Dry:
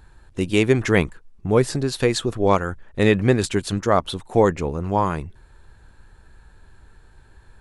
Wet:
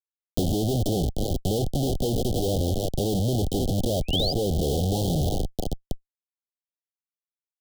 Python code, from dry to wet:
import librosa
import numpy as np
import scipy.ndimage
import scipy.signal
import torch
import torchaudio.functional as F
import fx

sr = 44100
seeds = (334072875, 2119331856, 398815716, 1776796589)

y = fx.rattle_buzz(x, sr, strikes_db=-35.0, level_db=-21.0)
y = fx.echo_thinned(y, sr, ms=314, feedback_pct=69, hz=440.0, wet_db=-14.5)
y = fx.env_lowpass_down(y, sr, base_hz=670.0, full_db=-14.0)
y = fx.high_shelf(y, sr, hz=4100.0, db=-11.5)
y = fx.schmitt(y, sr, flips_db=-32.0)
y = fx.spec_paint(y, sr, seeds[0], shape='rise', start_s=3.92, length_s=0.41, low_hz=1700.0, high_hz=5100.0, level_db=-24.0)
y = scipy.signal.sosfilt(scipy.signal.cheby1(5, 1.0, [780.0, 3100.0], 'bandstop', fs=sr, output='sos'), y)
y = fx.band_squash(y, sr, depth_pct=70)